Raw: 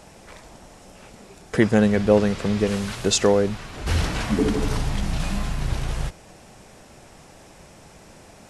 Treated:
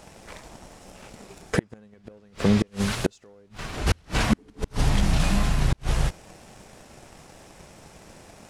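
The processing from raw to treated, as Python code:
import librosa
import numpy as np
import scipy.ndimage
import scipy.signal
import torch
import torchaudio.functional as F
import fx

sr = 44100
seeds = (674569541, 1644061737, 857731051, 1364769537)

y = fx.leveller(x, sr, passes=1)
y = fx.gate_flip(y, sr, shuts_db=-9.0, range_db=-37)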